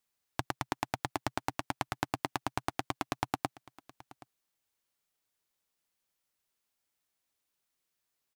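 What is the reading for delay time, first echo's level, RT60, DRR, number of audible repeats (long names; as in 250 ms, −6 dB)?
774 ms, −20.5 dB, no reverb audible, no reverb audible, 1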